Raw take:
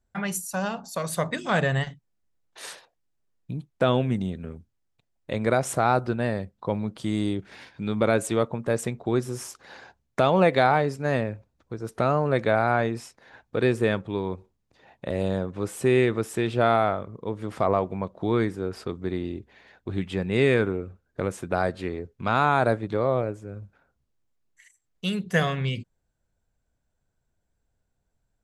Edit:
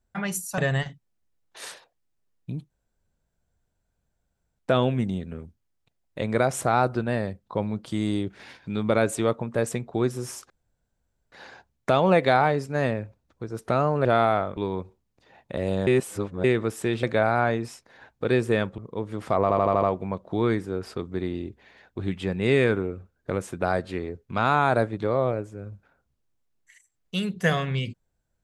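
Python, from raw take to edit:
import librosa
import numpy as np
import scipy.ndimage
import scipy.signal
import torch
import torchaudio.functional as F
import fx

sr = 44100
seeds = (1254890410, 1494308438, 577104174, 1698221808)

y = fx.edit(x, sr, fx.cut(start_s=0.58, length_s=1.01),
    fx.insert_room_tone(at_s=3.71, length_s=1.89),
    fx.insert_room_tone(at_s=9.62, length_s=0.82),
    fx.swap(start_s=12.35, length_s=1.75, other_s=16.56, other_length_s=0.52),
    fx.reverse_span(start_s=15.4, length_s=0.57),
    fx.stutter(start_s=17.72, slice_s=0.08, count=6), tone=tone)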